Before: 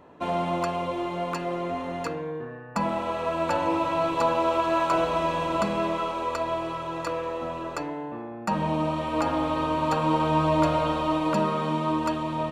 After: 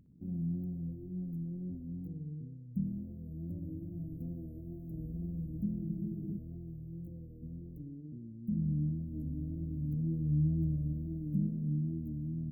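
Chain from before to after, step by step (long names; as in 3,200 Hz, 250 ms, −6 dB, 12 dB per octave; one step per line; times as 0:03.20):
inverse Chebyshev band-stop filter 1,000–5,100 Hz, stop band 80 dB
tape wow and flutter 70 cents
on a send: feedback echo with a band-pass in the loop 61 ms, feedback 74%, band-pass 750 Hz, level −7 dB
on the sum: frozen spectrum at 0:05.86, 0.52 s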